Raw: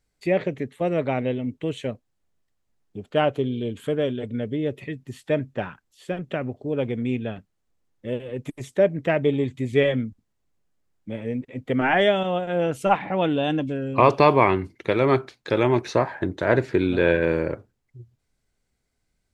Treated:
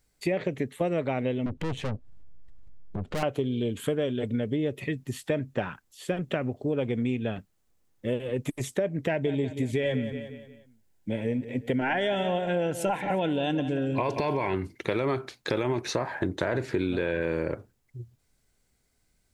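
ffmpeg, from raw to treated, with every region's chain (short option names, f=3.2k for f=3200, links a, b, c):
-filter_complex "[0:a]asettb=1/sr,asplit=3[a][b][c];[a]atrim=end=1.464[d];[b]atrim=start=1.46:end=3.23,asetpts=PTS-STARTPTS,afade=t=in:d=0.004:c=qsin,afade=t=out:st=1.766:d=0.004:c=qsin,aemphasis=mode=reproduction:type=riaa,acompressor=mode=upward:threshold=-23dB:ratio=2.5:attack=3.2:release=140:knee=2.83:detection=peak,aeval=exprs='(tanh(35.5*val(0)+0.75)-tanh(0.75))/35.5':c=same[e];[c]atrim=start=3.226[f];[d][e]acrossfade=d=0.004:c1=hsin:c2=qsin[g];[g][f]acrossfade=d=0.004:c1=qsin:c2=hsin,asettb=1/sr,asplit=3[h][i][j];[h]atrim=end=9.074[k];[i]atrim=start=9.07:end=14.54,asetpts=PTS-STARTPTS,afade=t=in:d=0.004:c=qsin,afade=t=out:st=5.466:d=0.004:c=qsin,asuperstop=centerf=1200:order=8:qfactor=5,aecho=1:1:179|358|537|716:0.178|0.0711|0.0285|0.0114,atrim=end_sample=241227[l];[j]atrim=start=14.536[m];[k][l]acrossfade=d=0.004:c1=hsin:c2=qsin[n];[n][m]acrossfade=d=0.004:c1=qsin:c2=hsin,highshelf=f=7.5k:g=8.5,alimiter=limit=-13dB:level=0:latency=1:release=24,acompressor=threshold=-27dB:ratio=6,volume=3dB"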